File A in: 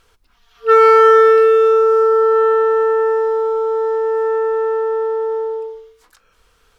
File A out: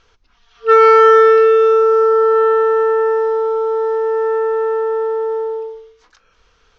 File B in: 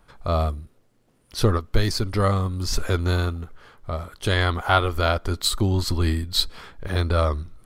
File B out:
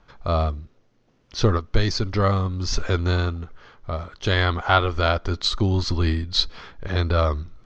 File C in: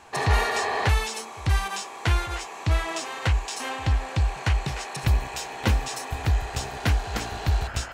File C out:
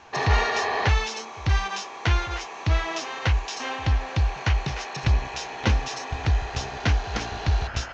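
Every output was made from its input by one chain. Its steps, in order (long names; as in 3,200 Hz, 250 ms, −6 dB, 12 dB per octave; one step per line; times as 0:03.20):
elliptic low-pass filter 6,300 Hz, stop band 50 dB
level +1.5 dB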